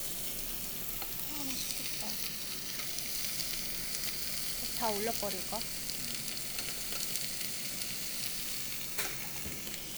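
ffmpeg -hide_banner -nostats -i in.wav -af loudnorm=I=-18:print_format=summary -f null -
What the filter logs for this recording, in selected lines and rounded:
Input Integrated:    -34.3 LUFS
Input True Peak:     -13.6 dBTP
Input LRA:             1.3 LU
Input Threshold:     -44.3 LUFS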